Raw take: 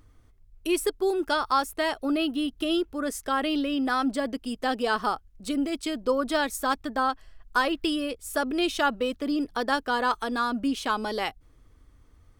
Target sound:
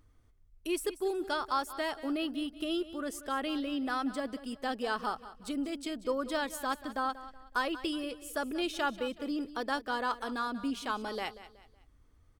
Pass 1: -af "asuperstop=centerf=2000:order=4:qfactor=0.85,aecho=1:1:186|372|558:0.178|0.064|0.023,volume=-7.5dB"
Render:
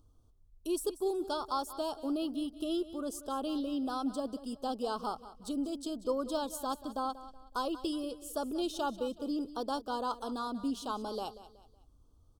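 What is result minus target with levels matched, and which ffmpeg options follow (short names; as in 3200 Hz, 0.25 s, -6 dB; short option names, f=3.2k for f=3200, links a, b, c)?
2000 Hz band -12.5 dB
-af "aecho=1:1:186|372|558:0.178|0.064|0.023,volume=-7.5dB"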